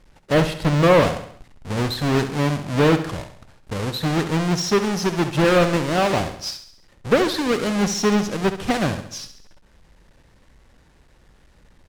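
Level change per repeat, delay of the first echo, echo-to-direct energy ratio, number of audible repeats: -6.0 dB, 68 ms, -9.5 dB, 5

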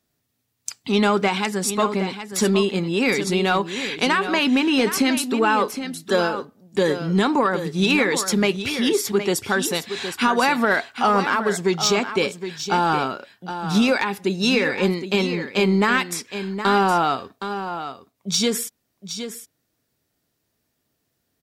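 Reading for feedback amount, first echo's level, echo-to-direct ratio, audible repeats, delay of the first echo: no steady repeat, -10.0 dB, -10.0 dB, 1, 0.766 s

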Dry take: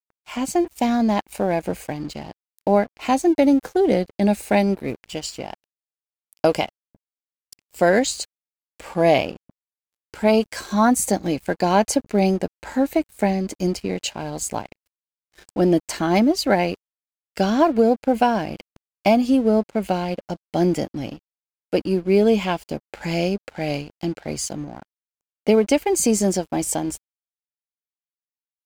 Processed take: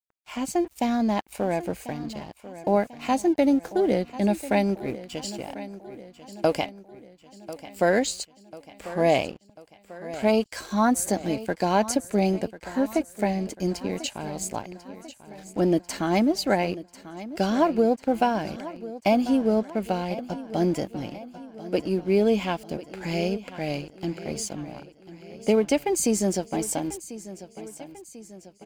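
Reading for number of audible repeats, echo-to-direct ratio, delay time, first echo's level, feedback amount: 4, -14.0 dB, 1.043 s, -15.5 dB, 53%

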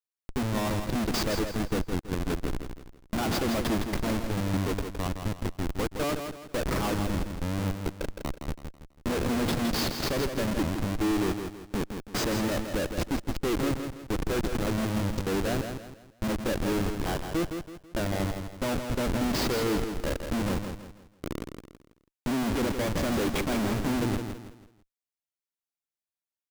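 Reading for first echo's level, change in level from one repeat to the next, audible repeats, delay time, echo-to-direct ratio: -7.0 dB, -9.0 dB, 4, 0.164 s, -6.5 dB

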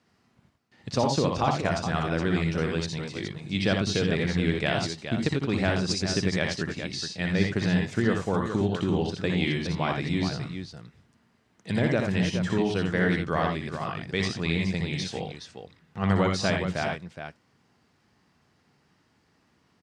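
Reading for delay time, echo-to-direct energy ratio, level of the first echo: 61 ms, -1.5 dB, -3.5 dB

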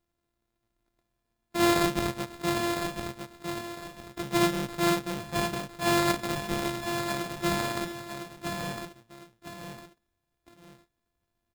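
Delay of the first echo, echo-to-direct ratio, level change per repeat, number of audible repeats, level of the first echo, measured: 1.006 s, -6.0 dB, -10.0 dB, 2, -6.5 dB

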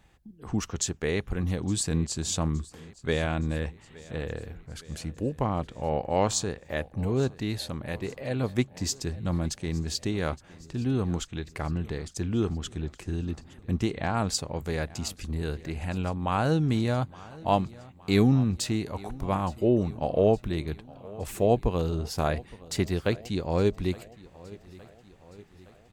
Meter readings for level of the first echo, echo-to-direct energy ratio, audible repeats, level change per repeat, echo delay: -21.0 dB, -19.0 dB, 3, -4.5 dB, 0.866 s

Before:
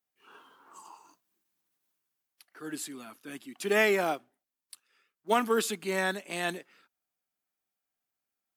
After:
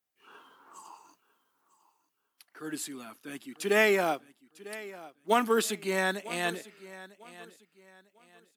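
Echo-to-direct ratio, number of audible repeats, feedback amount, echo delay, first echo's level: -17.5 dB, 2, 30%, 0.949 s, -18.0 dB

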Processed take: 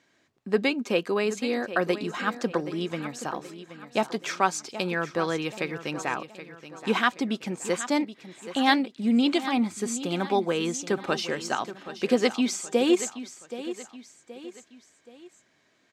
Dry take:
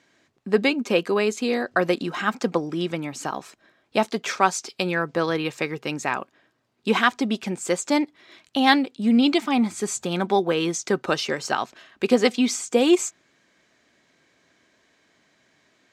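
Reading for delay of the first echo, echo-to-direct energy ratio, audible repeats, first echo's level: 0.775 s, -12.0 dB, 3, -13.0 dB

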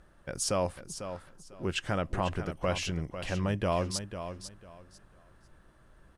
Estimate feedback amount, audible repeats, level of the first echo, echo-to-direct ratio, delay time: 22%, 2, -10.0 dB, -10.0 dB, 0.498 s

